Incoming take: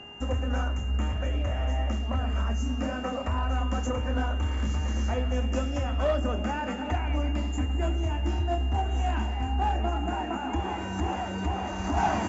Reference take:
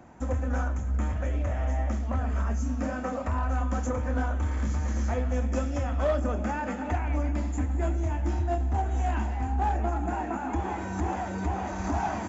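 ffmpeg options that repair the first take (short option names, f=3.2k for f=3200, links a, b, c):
-af "bandreject=f=410.2:t=h:w=4,bandreject=f=820.4:t=h:w=4,bandreject=f=1.2306k:t=h:w=4,bandreject=f=1.6408k:t=h:w=4,bandreject=f=2.051k:t=h:w=4,bandreject=f=2.8k:w=30,asetnsamples=n=441:p=0,asendcmd='11.97 volume volume -4.5dB',volume=0dB"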